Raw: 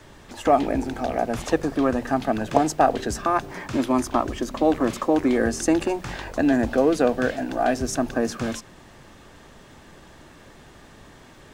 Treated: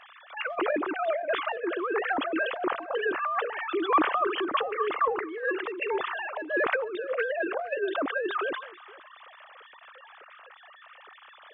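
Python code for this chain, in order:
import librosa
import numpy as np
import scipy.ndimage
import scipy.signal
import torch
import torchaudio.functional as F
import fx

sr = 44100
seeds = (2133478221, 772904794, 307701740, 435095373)

p1 = fx.sine_speech(x, sr)
p2 = fx.high_shelf(p1, sr, hz=2100.0, db=9.5)
p3 = 10.0 ** (-18.0 / 20.0) * np.tanh(p2 / 10.0 ** (-18.0 / 20.0))
p4 = p2 + (p3 * 10.0 ** (-11.0 / 20.0))
p5 = fx.over_compress(p4, sr, threshold_db=-23.0, ratio=-0.5)
p6 = fx.peak_eq(p5, sr, hz=1200.0, db=8.5, octaves=0.49)
p7 = p6 + fx.echo_single(p6, sr, ms=469, db=-21.5, dry=0)
p8 = fx.sustainer(p7, sr, db_per_s=80.0)
y = p8 * 10.0 ** (-6.5 / 20.0)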